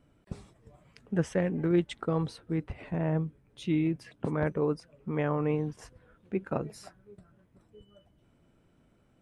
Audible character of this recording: noise floor -66 dBFS; spectral tilt -6.5 dB/octave

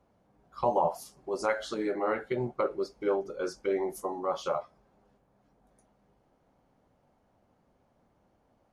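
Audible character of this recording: noise floor -70 dBFS; spectral tilt -4.5 dB/octave

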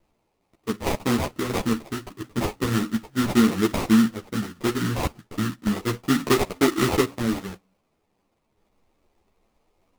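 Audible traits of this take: a quantiser's noise floor 12-bit, dither triangular; phasing stages 12, 0.35 Hz, lowest notch 570–1500 Hz; aliases and images of a low sample rate 1.6 kHz, jitter 20%; a shimmering, thickened sound

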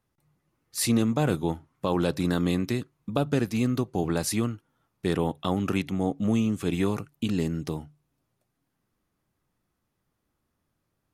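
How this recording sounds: noise floor -78 dBFS; spectral tilt -6.0 dB/octave

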